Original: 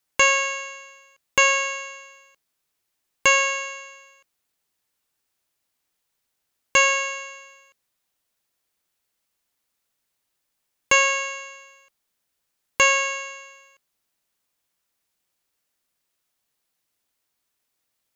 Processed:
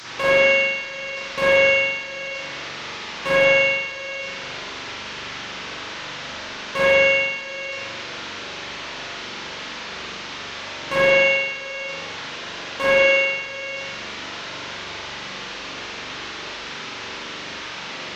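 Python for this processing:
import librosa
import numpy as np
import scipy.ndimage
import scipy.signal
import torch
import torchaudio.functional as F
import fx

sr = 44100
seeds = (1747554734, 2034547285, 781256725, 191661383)

y = fx.delta_mod(x, sr, bps=32000, step_db=-30.5)
y = 10.0 ** (-16.5 / 20.0) * (np.abs((y / 10.0 ** (-16.5 / 20.0) + 3.0) % 4.0 - 2.0) - 1.0)
y = fx.highpass(y, sr, hz=110.0, slope=6)
y = fx.notch(y, sr, hz=750.0, q=12.0)
y = fx.rev_spring(y, sr, rt60_s=1.1, pass_ms=(42,), chirp_ms=30, drr_db=-8.0)
y = y * librosa.db_to_amplitude(-1.5)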